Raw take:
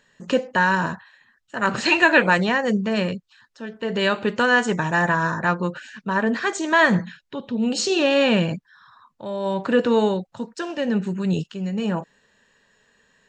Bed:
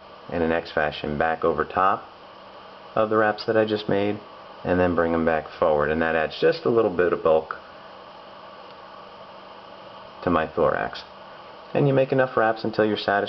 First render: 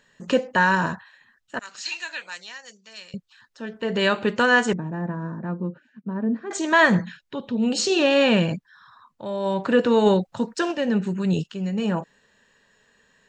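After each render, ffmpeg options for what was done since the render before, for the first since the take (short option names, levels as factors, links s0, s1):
-filter_complex "[0:a]asettb=1/sr,asplit=3[s0][s1][s2];[s0]atrim=end=1.594[s3];[s1]atrim=start=1.59:end=3.14,asetpts=PTS-STARTPTS,afade=t=in:d=0.004:c=qsin,afade=t=out:st=1.546:d=0.004:c=qsin,bandpass=f=5800:t=q:w=2.2[s4];[s2]atrim=start=3.136[s5];[s3][s4]acrossfade=d=0.004:c1=hsin:c2=qsin[s6];[s6][s5]acrossfade=d=0.004:c1=qsin:c2=hsin,asettb=1/sr,asplit=3[s7][s8][s9];[s7]atrim=end=4.734[s10];[s8]atrim=start=4.73:end=6.51,asetpts=PTS-STARTPTS,afade=t=in:d=0.004:c=qsin,afade=t=out:st=1.776:d=0.004:c=qsin,bandpass=f=230:t=q:w=1.5[s11];[s9]atrim=start=6.506[s12];[s10][s11]acrossfade=d=0.004:c1=hsin:c2=qsin[s13];[s13][s12]acrossfade=d=0.004:c1=qsin:c2=hsin,asplit=3[s14][s15][s16];[s14]afade=t=out:st=10.05:d=0.02[s17];[s15]acontrast=29,afade=t=in:st=10.05:d=0.02,afade=t=out:st=10.71:d=0.02[s18];[s16]afade=t=in:st=10.71:d=0.02[s19];[s17][s18][s19]amix=inputs=3:normalize=0"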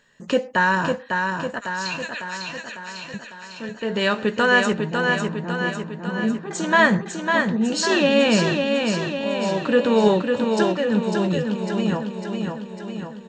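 -filter_complex "[0:a]asplit=2[s0][s1];[s1]adelay=14,volume=0.224[s2];[s0][s2]amix=inputs=2:normalize=0,aecho=1:1:551|1102|1653|2204|2755|3306|3857|4408:0.596|0.351|0.207|0.122|0.0722|0.0426|0.0251|0.0148"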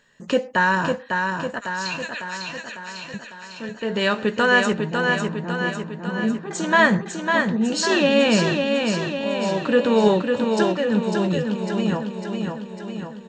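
-af anull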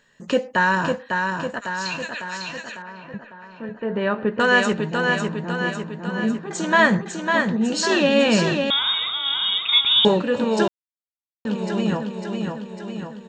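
-filter_complex "[0:a]asettb=1/sr,asplit=3[s0][s1][s2];[s0]atrim=end=2.824[s3];[s1]atrim=start=2.82:end=4.4,asetpts=PTS-STARTPTS,afade=t=in:d=0.004:c=qsin,afade=t=out:st=1.576:d=0.004:c=qsin,lowpass=1500[s4];[s2]atrim=start=4.396[s5];[s3][s4]acrossfade=d=0.004:c1=hsin:c2=qsin[s6];[s6][s5]acrossfade=d=0.004:c1=qsin:c2=hsin,asettb=1/sr,asplit=3[s7][s8][s9];[s7]atrim=end=8.704[s10];[s8]atrim=start=8.7:end=10.05,asetpts=PTS-STARTPTS,afade=t=in:d=0.004:c=qsin,afade=t=out:st=1.346:d=0.004:c=qsin,lowpass=f=3300:t=q:w=0.5098,lowpass=f=3300:t=q:w=0.6013,lowpass=f=3300:t=q:w=0.9,lowpass=f=3300:t=q:w=2.563,afreqshift=-3900[s11];[s9]atrim=start=10.046[s12];[s10][s11]acrossfade=d=0.004:c1=hsin:c2=qsin[s13];[s13][s12]acrossfade=d=0.004:c1=qsin:c2=hsin,asplit=3[s14][s15][s16];[s14]atrim=end=10.68,asetpts=PTS-STARTPTS,afade=t=out:st=10.676:d=0.004:c=hsin[s17];[s15]atrim=start=10.68:end=11.45,asetpts=PTS-STARTPTS,volume=0[s18];[s16]atrim=start=11.45,asetpts=PTS-STARTPTS,afade=t=in:d=0.004:c=hsin[s19];[s17][s18][s19]concat=n=3:v=0:a=1"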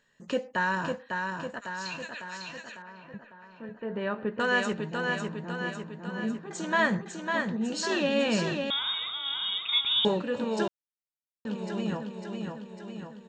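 -af "volume=0.355"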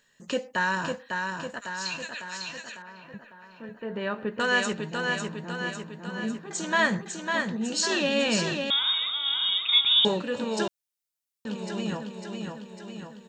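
-af "highshelf=f=3000:g=9.5"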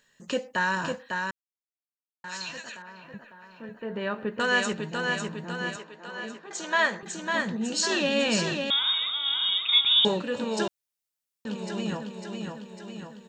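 -filter_complex "[0:a]asettb=1/sr,asplit=3[s0][s1][s2];[s0]atrim=end=5.764[s3];[s1]atrim=start=5.76:end=7.03,asetpts=PTS-STARTPTS,afade=t=in:d=0.004:c=qsin,afade=t=out:st=1.266:d=0.004:c=qsin,highpass=410,lowpass=6800[s4];[s2]atrim=start=7.026[s5];[s3][s4]acrossfade=d=0.004:c1=hsin:c2=qsin[s6];[s6][s5]acrossfade=d=0.004:c1=qsin:c2=hsin,asplit=3[s7][s8][s9];[s7]atrim=end=1.31,asetpts=PTS-STARTPTS,afade=t=out:st=1.306:d=0.004:c=hsin[s10];[s8]atrim=start=1.31:end=2.24,asetpts=PTS-STARTPTS,volume=0[s11];[s9]atrim=start=2.24,asetpts=PTS-STARTPTS,afade=t=in:d=0.004:c=hsin[s12];[s10][s11][s12]concat=n=3:v=0:a=1"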